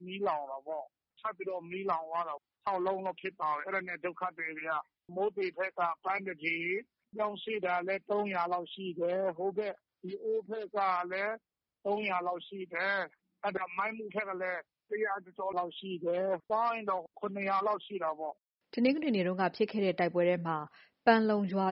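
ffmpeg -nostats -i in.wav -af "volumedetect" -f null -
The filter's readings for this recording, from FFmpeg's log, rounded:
mean_volume: -34.1 dB
max_volume: -10.1 dB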